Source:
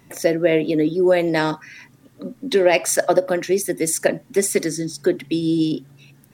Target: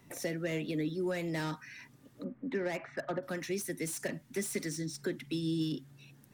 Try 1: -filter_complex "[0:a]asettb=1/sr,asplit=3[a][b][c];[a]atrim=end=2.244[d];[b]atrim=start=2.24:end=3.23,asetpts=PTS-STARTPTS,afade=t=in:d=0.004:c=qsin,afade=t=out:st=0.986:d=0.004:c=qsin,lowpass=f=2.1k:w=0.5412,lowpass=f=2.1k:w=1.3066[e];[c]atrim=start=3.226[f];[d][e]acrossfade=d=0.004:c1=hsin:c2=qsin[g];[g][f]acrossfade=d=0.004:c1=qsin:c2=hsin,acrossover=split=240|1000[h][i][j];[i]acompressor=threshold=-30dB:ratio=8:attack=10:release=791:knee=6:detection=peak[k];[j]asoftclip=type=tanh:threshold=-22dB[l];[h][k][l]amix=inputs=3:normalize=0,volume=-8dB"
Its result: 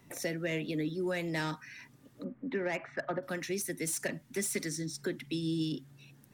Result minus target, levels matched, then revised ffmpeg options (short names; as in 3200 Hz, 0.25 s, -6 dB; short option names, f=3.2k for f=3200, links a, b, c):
soft clip: distortion -5 dB
-filter_complex "[0:a]asettb=1/sr,asplit=3[a][b][c];[a]atrim=end=2.244[d];[b]atrim=start=2.24:end=3.23,asetpts=PTS-STARTPTS,afade=t=in:d=0.004:c=qsin,afade=t=out:st=0.986:d=0.004:c=qsin,lowpass=f=2.1k:w=0.5412,lowpass=f=2.1k:w=1.3066[e];[c]atrim=start=3.226[f];[d][e]acrossfade=d=0.004:c1=hsin:c2=qsin[g];[g][f]acrossfade=d=0.004:c1=qsin:c2=hsin,acrossover=split=240|1000[h][i][j];[i]acompressor=threshold=-30dB:ratio=8:attack=10:release=791:knee=6:detection=peak[k];[j]asoftclip=type=tanh:threshold=-29dB[l];[h][k][l]amix=inputs=3:normalize=0,volume=-8dB"